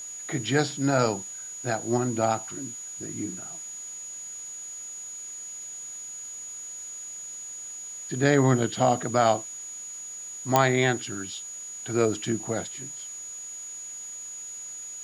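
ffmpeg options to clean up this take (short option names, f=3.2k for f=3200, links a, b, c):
-af "adeclick=t=4,bandreject=f=6.8k:w=30,afwtdn=0.0028"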